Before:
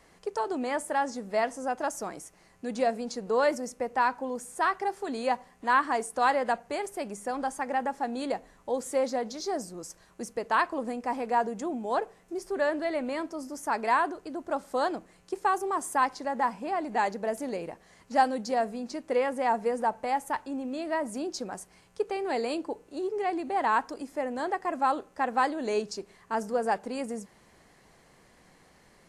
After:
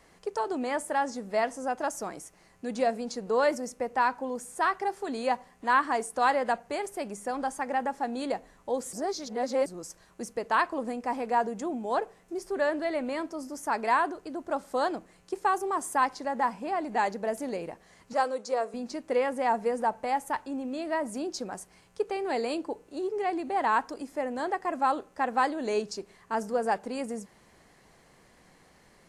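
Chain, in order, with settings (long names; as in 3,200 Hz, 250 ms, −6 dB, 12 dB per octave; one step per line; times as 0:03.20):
0:08.93–0:09.66: reverse
0:18.13–0:18.74: loudspeaker in its box 460–9,800 Hz, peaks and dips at 480 Hz +6 dB, 770 Hz −6 dB, 1,200 Hz +5 dB, 1,800 Hz −6 dB, 3,000 Hz −5 dB, 4,800 Hz −4 dB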